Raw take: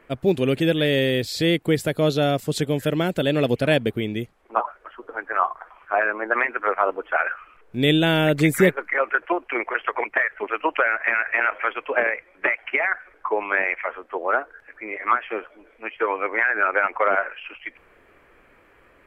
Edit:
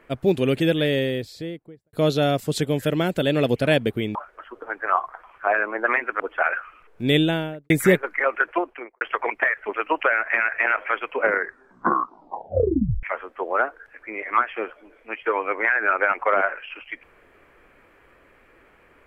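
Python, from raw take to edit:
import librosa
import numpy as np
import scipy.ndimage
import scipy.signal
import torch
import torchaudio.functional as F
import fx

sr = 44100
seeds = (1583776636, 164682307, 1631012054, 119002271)

y = fx.studio_fade_out(x, sr, start_s=0.62, length_s=1.31)
y = fx.studio_fade_out(y, sr, start_s=7.85, length_s=0.59)
y = fx.studio_fade_out(y, sr, start_s=9.28, length_s=0.47)
y = fx.edit(y, sr, fx.cut(start_s=4.15, length_s=0.47),
    fx.cut(start_s=6.67, length_s=0.27),
    fx.tape_stop(start_s=11.83, length_s=1.94), tone=tone)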